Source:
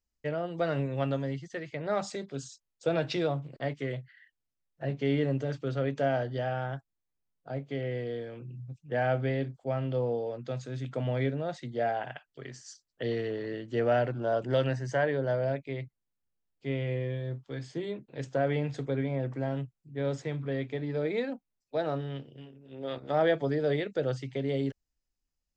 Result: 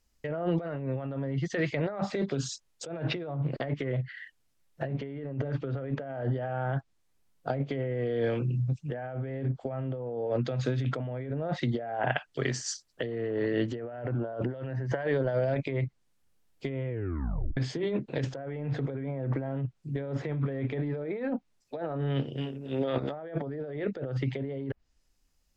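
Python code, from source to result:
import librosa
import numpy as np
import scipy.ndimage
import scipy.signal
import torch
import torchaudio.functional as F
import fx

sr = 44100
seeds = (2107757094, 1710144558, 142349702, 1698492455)

y = fx.over_compress(x, sr, threshold_db=-34.0, ratio=-0.5, at=(14.77, 15.72), fade=0.02)
y = fx.edit(y, sr, fx.tape_stop(start_s=16.89, length_s=0.68), tone=tone)
y = fx.env_lowpass_down(y, sr, base_hz=1800.0, full_db=-29.0)
y = fx.over_compress(y, sr, threshold_db=-39.0, ratio=-1.0)
y = F.gain(torch.from_numpy(y), 7.0).numpy()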